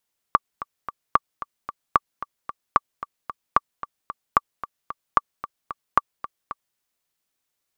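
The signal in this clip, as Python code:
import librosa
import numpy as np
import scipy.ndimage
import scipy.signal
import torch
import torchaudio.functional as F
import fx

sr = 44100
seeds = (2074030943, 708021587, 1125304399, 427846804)

y = fx.click_track(sr, bpm=224, beats=3, bars=8, hz=1160.0, accent_db=15.5, level_db=-1.5)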